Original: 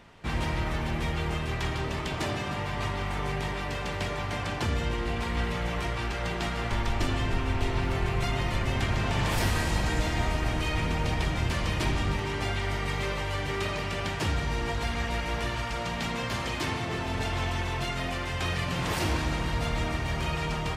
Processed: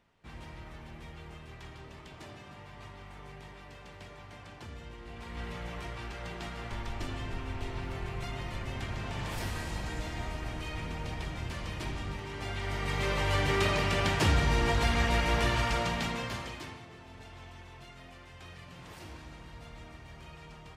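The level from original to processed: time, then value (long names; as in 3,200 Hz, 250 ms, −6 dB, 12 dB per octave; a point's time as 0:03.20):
0:05.00 −17 dB
0:05.49 −9.5 dB
0:12.29 −9.5 dB
0:13.33 +3 dB
0:15.73 +3 dB
0:16.35 −6 dB
0:16.92 −19 dB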